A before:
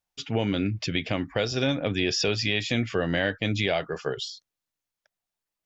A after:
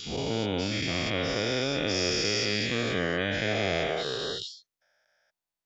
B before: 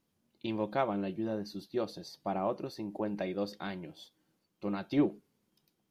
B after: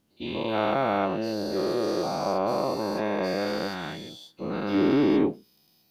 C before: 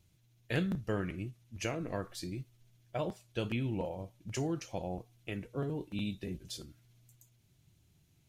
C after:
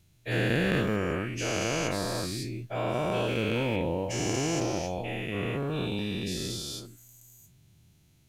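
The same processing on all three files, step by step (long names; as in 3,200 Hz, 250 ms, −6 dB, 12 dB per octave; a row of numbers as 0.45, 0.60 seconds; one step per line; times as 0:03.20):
every bin's largest magnitude spread in time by 480 ms
normalise the peak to −12 dBFS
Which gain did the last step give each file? −9.5, +0.5, 0.0 decibels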